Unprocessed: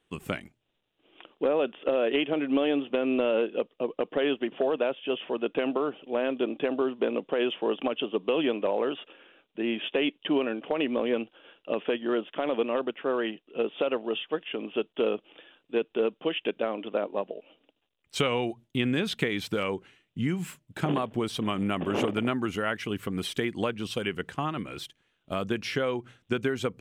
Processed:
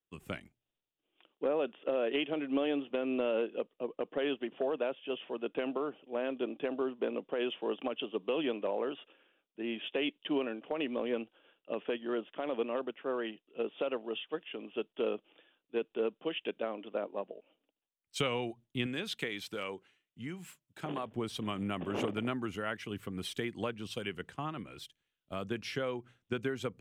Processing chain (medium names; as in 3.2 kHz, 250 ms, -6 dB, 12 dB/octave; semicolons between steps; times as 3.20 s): 18.86–21.06 s: bass shelf 220 Hz -9.5 dB; three bands expanded up and down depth 40%; trim -7 dB